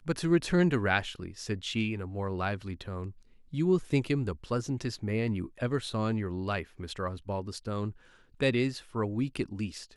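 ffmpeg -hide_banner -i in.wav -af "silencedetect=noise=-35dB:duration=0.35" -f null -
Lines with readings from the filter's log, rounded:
silence_start: 3.08
silence_end: 3.54 | silence_duration: 0.45
silence_start: 7.90
silence_end: 8.40 | silence_duration: 0.51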